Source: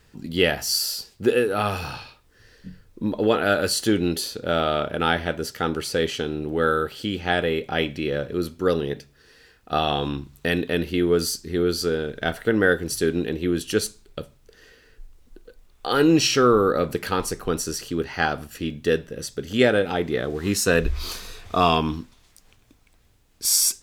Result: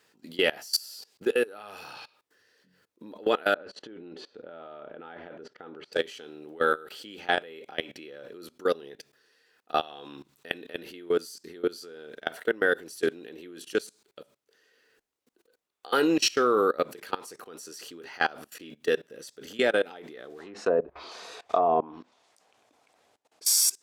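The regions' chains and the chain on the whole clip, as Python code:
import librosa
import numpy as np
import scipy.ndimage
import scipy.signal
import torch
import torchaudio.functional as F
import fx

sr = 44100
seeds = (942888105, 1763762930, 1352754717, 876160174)

y = fx.chain(x, sr, fx.over_compress(threshold_db=-25.0, ratio=-0.5),
    fx.spacing_loss(db_at_10k=40), at=(3.54, 5.93))
y = fx.chain(y, sr, fx.lowpass(hz=10000.0, slope=12),
    fx.env_lowpass_down(base_hz=590.0, full_db=-15.5),
    fx.peak_eq(hz=710.0, db=11.0, octaves=1.2), at=(20.39, 23.45))
y = scipy.signal.sosfilt(scipy.signal.butter(2, 340.0, 'highpass', fs=sr, output='sos'), y)
y = fx.level_steps(y, sr, step_db=22)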